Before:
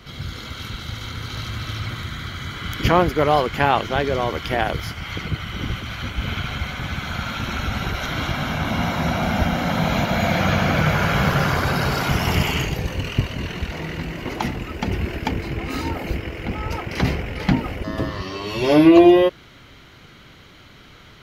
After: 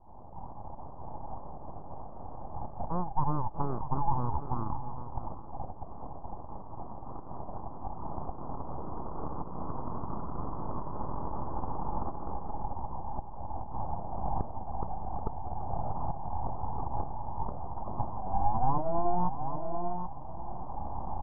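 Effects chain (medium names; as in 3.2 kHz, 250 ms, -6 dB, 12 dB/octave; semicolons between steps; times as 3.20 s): local Wiener filter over 41 samples; recorder AGC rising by 16 dB/s; on a send: delay 781 ms -16 dB; on the sum: compression 3:1, threshold -24 dBFS, peak gain reduction 12.5 dB; resonant high-pass 420 Hz, resonance Q 4.9; full-wave rectifier; steep low-pass 1.1 kHz 48 dB/octave; echo from a far wall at 110 m, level -12 dB; trim -7 dB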